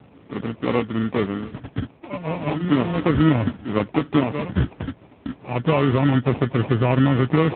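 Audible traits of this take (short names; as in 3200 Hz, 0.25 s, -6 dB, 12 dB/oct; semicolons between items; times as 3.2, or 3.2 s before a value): aliases and images of a low sample rate 1600 Hz, jitter 0%; AMR-NB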